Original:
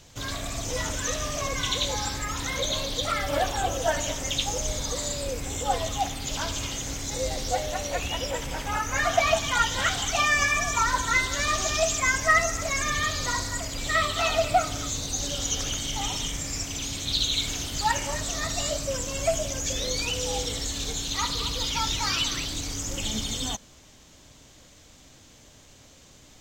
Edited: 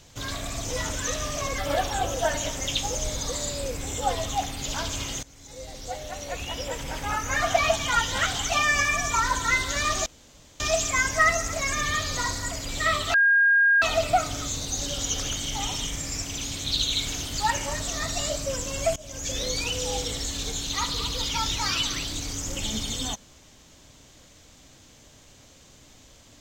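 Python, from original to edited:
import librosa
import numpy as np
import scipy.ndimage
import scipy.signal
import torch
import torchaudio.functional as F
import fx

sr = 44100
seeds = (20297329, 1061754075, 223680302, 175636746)

y = fx.edit(x, sr, fx.cut(start_s=1.58, length_s=1.63),
    fx.fade_in_from(start_s=6.86, length_s=1.86, floor_db=-21.5),
    fx.insert_room_tone(at_s=11.69, length_s=0.54),
    fx.insert_tone(at_s=14.23, length_s=0.68, hz=1620.0, db=-15.5),
    fx.fade_in_from(start_s=19.37, length_s=0.41, floor_db=-22.5), tone=tone)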